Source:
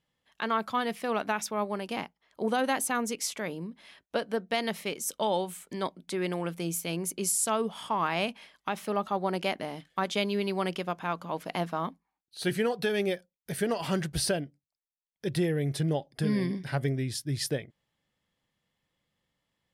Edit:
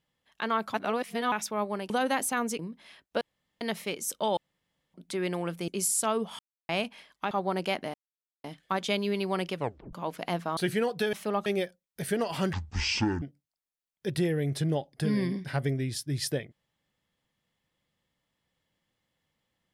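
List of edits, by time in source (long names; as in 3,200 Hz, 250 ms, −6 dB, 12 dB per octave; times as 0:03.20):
0:00.74–0:01.32: reverse
0:01.90–0:02.48: remove
0:03.17–0:03.58: remove
0:04.20–0:04.60: fill with room tone
0:05.36–0:05.93: fill with room tone
0:06.67–0:07.12: remove
0:07.83–0:08.13: silence
0:08.75–0:09.08: move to 0:12.96
0:09.71: splice in silence 0.50 s
0:10.82: tape stop 0.38 s
0:11.84–0:12.40: remove
0:14.03–0:14.41: play speed 55%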